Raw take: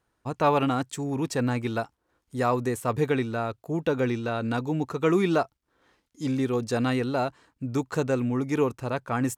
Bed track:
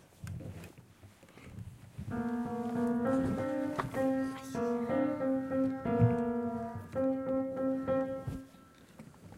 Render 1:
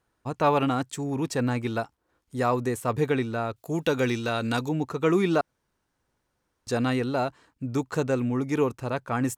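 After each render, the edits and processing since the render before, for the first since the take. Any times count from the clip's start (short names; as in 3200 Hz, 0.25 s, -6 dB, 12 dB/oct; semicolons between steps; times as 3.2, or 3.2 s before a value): 3.56–4.69 high shelf 2500 Hz +11.5 dB; 5.41–6.67 room tone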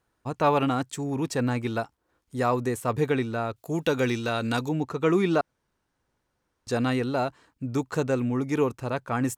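4.8–6.71 high shelf 8000 Hz -5 dB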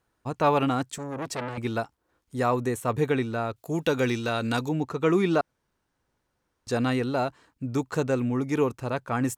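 0.98–1.58 core saturation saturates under 1600 Hz; 2.42–3.26 notch 4900 Hz, Q 7.8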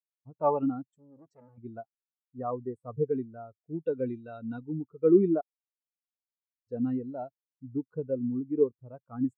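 spectral expander 2.5:1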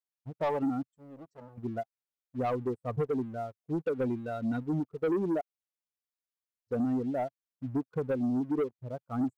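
compressor 5:1, threshold -31 dBFS, peak gain reduction 14.5 dB; sample leveller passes 2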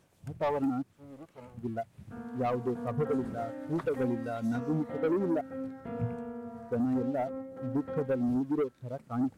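add bed track -7 dB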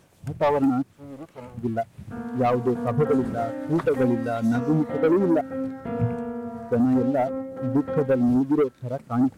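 gain +9 dB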